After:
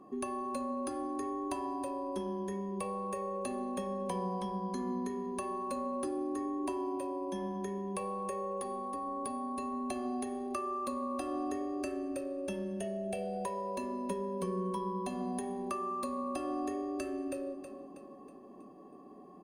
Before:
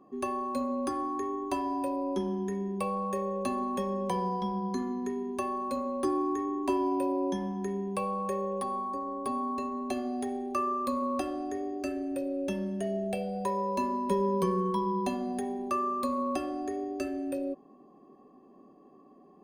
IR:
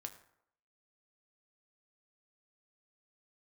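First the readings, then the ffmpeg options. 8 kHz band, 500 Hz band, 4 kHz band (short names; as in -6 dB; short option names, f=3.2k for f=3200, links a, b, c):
0.0 dB, -5.0 dB, -4.5 dB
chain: -filter_complex "[0:a]equalizer=f=10k:t=o:w=0.62:g=13,acompressor=threshold=-37dB:ratio=6,aecho=1:1:321|642|963|1284|1605:0.316|0.158|0.0791|0.0395|0.0198,asplit=2[a][b];[1:a]atrim=start_sample=2205,asetrate=26901,aresample=44100,lowpass=7.7k[c];[b][c]afir=irnorm=-1:irlink=0,volume=-1.5dB[d];[a][d]amix=inputs=2:normalize=0,volume=-1.5dB"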